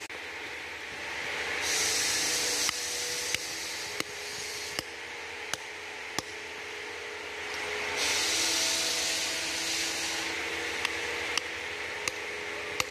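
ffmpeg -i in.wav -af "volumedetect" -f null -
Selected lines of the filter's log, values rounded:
mean_volume: -33.1 dB
max_volume: -8.3 dB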